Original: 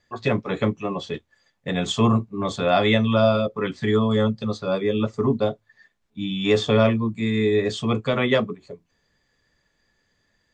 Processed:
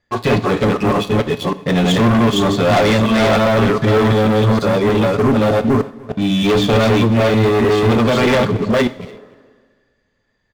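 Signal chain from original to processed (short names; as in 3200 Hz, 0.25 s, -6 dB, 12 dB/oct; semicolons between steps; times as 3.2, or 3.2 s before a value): reverse delay 0.306 s, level -1 dB; LPF 2600 Hz 6 dB/oct; sample leveller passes 3; in parallel at +2.5 dB: limiter -15.5 dBFS, peak gain reduction 11 dB; on the sum: soft clip -8 dBFS, distortion -16 dB; on a send: echo 0.292 s -22.5 dB; on the sum: two-slope reverb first 0.47 s, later 2 s, from -18 dB, DRR 10.5 dB; spectral repair 9.03–9.95, 220–1900 Hz both; gain -2 dB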